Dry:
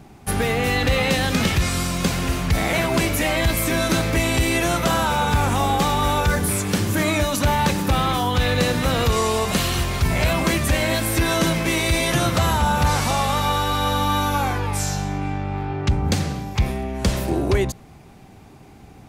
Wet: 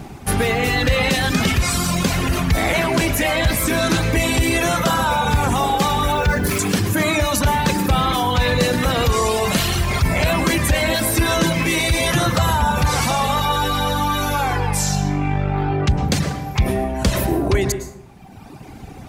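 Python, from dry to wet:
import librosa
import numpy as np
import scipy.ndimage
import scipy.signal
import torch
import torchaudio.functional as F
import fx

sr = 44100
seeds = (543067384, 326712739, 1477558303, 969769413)

p1 = fx.median_filter(x, sr, points=5, at=(6.12, 6.59))
p2 = fx.dereverb_blind(p1, sr, rt60_s=1.5)
p3 = fx.over_compress(p2, sr, threshold_db=-31.0, ratio=-1.0)
p4 = p2 + F.gain(torch.from_numpy(p3), -2.0).numpy()
p5 = fx.rev_plate(p4, sr, seeds[0], rt60_s=0.84, hf_ratio=0.45, predelay_ms=95, drr_db=9.0)
p6 = fx.doppler_dist(p5, sr, depth_ms=0.13, at=(2.74, 3.98))
y = F.gain(torch.from_numpy(p6), 2.0).numpy()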